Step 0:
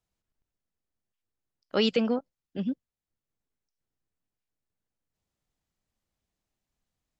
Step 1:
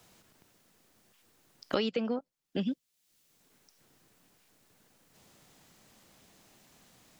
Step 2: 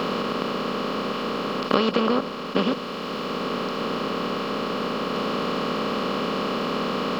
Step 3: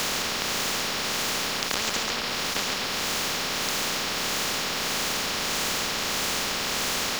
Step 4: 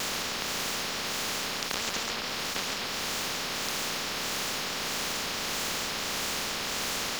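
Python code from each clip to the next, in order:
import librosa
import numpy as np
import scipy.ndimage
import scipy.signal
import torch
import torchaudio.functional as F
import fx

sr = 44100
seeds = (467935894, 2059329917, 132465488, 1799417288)

y1 = fx.band_squash(x, sr, depth_pct=100)
y1 = y1 * 10.0 ** (-4.0 / 20.0)
y2 = fx.bin_compress(y1, sr, power=0.2)
y2 = fx.peak_eq(y2, sr, hz=1100.0, db=14.0, octaves=0.33)
y2 = y2 * 10.0 ** (3.5 / 20.0)
y3 = y2 * (1.0 - 0.54 / 2.0 + 0.54 / 2.0 * np.cos(2.0 * np.pi * 1.6 * (np.arange(len(y2)) / sr)))
y3 = y3 + 10.0 ** (-6.0 / 20.0) * np.pad(y3, (int(137 * sr / 1000.0), 0))[:len(y3)]
y3 = fx.spectral_comp(y3, sr, ratio=10.0)
y4 = fx.vibrato(y3, sr, rate_hz=4.5, depth_cents=77.0)
y4 = y4 * 10.0 ** (-4.5 / 20.0)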